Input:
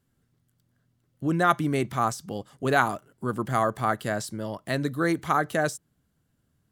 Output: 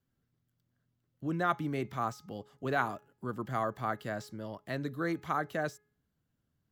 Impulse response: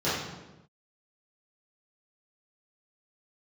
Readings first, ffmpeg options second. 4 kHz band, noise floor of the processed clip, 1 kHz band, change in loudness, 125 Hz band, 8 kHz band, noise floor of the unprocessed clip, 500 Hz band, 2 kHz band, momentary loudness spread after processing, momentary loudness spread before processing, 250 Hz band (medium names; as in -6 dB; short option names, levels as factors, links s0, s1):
-10.5 dB, -81 dBFS, -8.5 dB, -8.5 dB, -8.5 dB, -16.0 dB, -73 dBFS, -8.5 dB, -8.5 dB, 10 LU, 10 LU, -8.5 dB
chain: -filter_complex "[0:a]equalizer=f=9200:w=2.5:g=-13,bandreject=f=419.7:t=h:w=4,bandreject=f=839.4:t=h:w=4,bandreject=f=1259.1:t=h:w=4,bandreject=f=1678.8:t=h:w=4,bandreject=f=2098.5:t=h:w=4,bandreject=f=2518.2:t=h:w=4,acrossover=split=350|1200|3300[s0][s1][s2][s3];[s3]asoftclip=type=tanh:threshold=0.0112[s4];[s0][s1][s2][s4]amix=inputs=4:normalize=0,volume=0.376"